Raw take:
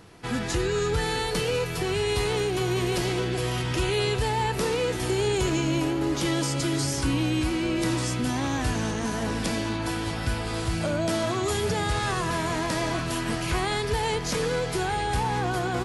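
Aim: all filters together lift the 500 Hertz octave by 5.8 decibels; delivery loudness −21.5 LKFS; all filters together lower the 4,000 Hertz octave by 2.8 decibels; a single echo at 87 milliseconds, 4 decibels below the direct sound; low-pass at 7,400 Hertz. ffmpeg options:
ffmpeg -i in.wav -af "lowpass=7400,equalizer=frequency=500:width_type=o:gain=7.5,equalizer=frequency=4000:width_type=o:gain=-3.5,aecho=1:1:87:0.631,volume=0.5dB" out.wav

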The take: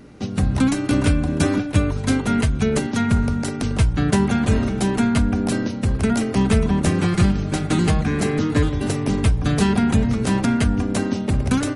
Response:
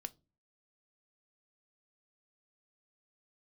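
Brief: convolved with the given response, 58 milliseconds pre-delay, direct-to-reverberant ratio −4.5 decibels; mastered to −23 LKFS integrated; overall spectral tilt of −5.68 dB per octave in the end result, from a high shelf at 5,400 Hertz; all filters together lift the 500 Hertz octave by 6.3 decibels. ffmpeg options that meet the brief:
-filter_complex "[0:a]equalizer=frequency=500:width_type=o:gain=8,highshelf=frequency=5400:gain=9,asplit=2[link_01][link_02];[1:a]atrim=start_sample=2205,adelay=58[link_03];[link_02][link_03]afir=irnorm=-1:irlink=0,volume=8dB[link_04];[link_01][link_04]amix=inputs=2:normalize=0,volume=-11dB"

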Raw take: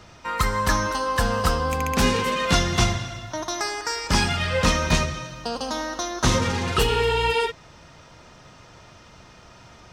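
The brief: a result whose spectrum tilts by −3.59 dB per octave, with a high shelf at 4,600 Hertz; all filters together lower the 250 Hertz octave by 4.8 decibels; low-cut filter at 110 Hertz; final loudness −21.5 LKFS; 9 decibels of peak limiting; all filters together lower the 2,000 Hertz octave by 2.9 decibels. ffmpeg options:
ffmpeg -i in.wav -af "highpass=110,equalizer=frequency=250:width_type=o:gain=-6,equalizer=frequency=2000:width_type=o:gain=-3,highshelf=frequency=4600:gain=-3.5,volume=6dB,alimiter=limit=-11dB:level=0:latency=1" out.wav

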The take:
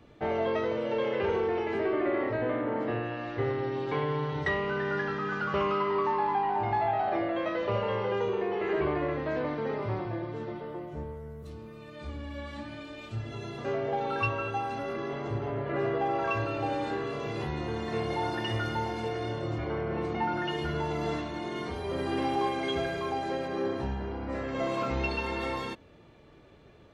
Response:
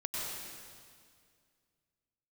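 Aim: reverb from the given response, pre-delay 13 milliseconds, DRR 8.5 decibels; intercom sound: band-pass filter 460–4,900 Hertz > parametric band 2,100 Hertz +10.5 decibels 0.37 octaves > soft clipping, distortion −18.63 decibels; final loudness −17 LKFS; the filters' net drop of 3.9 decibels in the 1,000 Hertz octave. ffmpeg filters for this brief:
-filter_complex "[0:a]equalizer=frequency=1000:width_type=o:gain=-5,asplit=2[link_01][link_02];[1:a]atrim=start_sample=2205,adelay=13[link_03];[link_02][link_03]afir=irnorm=-1:irlink=0,volume=-12.5dB[link_04];[link_01][link_04]amix=inputs=2:normalize=0,highpass=460,lowpass=4900,equalizer=frequency=2100:width_type=o:width=0.37:gain=10.5,asoftclip=threshold=-24.5dB,volume=17dB"

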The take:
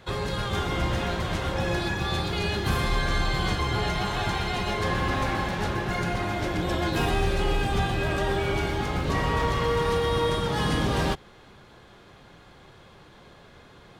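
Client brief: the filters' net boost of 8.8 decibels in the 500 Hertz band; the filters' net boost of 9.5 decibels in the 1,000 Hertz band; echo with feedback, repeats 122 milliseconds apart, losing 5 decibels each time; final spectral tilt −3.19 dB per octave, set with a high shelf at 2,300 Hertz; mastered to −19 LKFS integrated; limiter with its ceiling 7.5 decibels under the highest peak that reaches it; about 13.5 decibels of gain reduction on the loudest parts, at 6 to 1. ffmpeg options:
ffmpeg -i in.wav -af "equalizer=frequency=500:width_type=o:gain=8.5,equalizer=frequency=1000:width_type=o:gain=8,highshelf=frequency=2300:gain=5.5,acompressor=threshold=-28dB:ratio=6,alimiter=limit=-24dB:level=0:latency=1,aecho=1:1:122|244|366|488|610|732|854:0.562|0.315|0.176|0.0988|0.0553|0.031|0.0173,volume=12.5dB" out.wav

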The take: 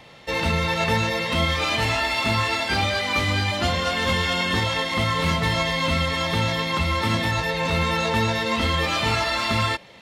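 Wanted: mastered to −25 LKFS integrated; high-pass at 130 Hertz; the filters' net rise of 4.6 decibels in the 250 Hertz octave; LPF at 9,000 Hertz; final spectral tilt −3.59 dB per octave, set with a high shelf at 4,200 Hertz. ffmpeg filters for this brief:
ffmpeg -i in.wav -af "highpass=130,lowpass=9000,equalizer=frequency=250:width_type=o:gain=7,highshelf=frequency=4200:gain=-8.5,volume=-2.5dB" out.wav

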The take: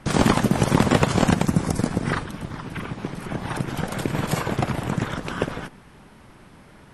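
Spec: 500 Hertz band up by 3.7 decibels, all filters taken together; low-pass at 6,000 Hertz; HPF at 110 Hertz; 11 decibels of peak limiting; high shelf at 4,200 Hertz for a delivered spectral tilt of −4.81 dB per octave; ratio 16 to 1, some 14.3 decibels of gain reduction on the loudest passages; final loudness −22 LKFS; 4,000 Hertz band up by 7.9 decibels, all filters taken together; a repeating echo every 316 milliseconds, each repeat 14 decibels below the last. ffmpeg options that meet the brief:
ffmpeg -i in.wav -af "highpass=110,lowpass=6000,equalizer=frequency=500:width_type=o:gain=4.5,equalizer=frequency=4000:width_type=o:gain=8.5,highshelf=frequency=4200:gain=4.5,acompressor=threshold=-25dB:ratio=16,alimiter=limit=-22.5dB:level=0:latency=1,aecho=1:1:316|632:0.2|0.0399,volume=11.5dB" out.wav

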